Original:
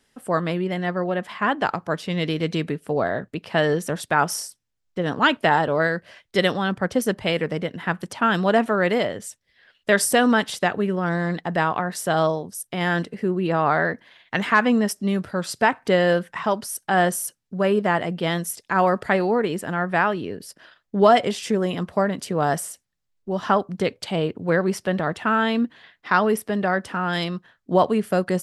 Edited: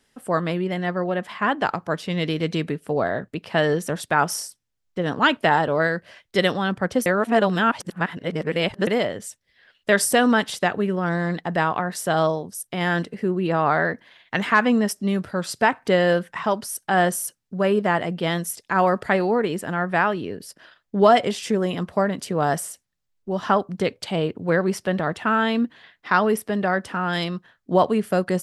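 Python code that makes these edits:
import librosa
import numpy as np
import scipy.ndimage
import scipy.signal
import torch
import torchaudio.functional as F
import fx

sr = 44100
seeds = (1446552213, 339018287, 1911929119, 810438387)

y = fx.edit(x, sr, fx.reverse_span(start_s=7.06, length_s=1.81), tone=tone)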